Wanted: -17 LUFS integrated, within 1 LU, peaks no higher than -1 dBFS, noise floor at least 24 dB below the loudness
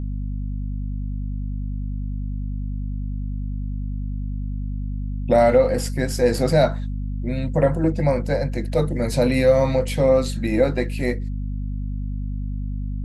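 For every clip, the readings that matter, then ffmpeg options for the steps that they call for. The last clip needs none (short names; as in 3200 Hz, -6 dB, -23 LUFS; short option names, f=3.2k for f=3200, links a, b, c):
hum 50 Hz; harmonics up to 250 Hz; hum level -24 dBFS; loudness -23.0 LUFS; peak -4.5 dBFS; loudness target -17.0 LUFS
-> -af "bandreject=f=50:t=h:w=6,bandreject=f=100:t=h:w=6,bandreject=f=150:t=h:w=6,bandreject=f=200:t=h:w=6,bandreject=f=250:t=h:w=6"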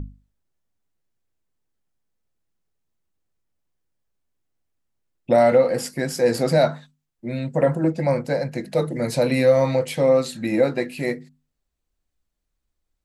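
hum none; loudness -21.0 LUFS; peak -5.5 dBFS; loudness target -17.0 LUFS
-> -af "volume=4dB"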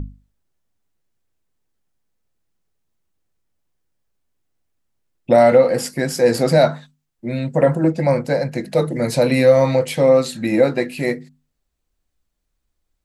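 loudness -17.0 LUFS; peak -1.5 dBFS; noise floor -74 dBFS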